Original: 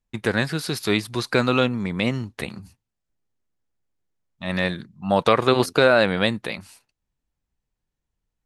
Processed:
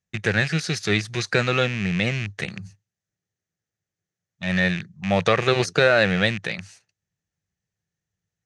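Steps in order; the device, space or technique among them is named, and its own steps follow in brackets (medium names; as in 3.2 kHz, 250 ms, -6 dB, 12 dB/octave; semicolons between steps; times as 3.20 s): car door speaker with a rattle (rattle on loud lows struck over -33 dBFS, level -19 dBFS; cabinet simulation 98–8300 Hz, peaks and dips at 100 Hz +10 dB, 170 Hz +8 dB, 260 Hz -10 dB, 980 Hz -9 dB, 1.8 kHz +7 dB, 6.2 kHz +9 dB); trim -1 dB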